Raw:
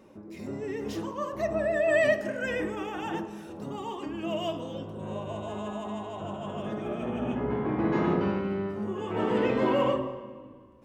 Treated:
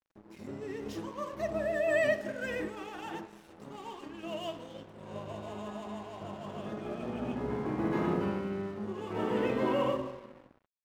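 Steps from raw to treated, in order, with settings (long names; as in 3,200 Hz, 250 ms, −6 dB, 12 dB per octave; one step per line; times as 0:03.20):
0:02.68–0:05.14: low-shelf EQ 360 Hz −5.5 dB
dead-zone distortion −47.5 dBFS
level −4 dB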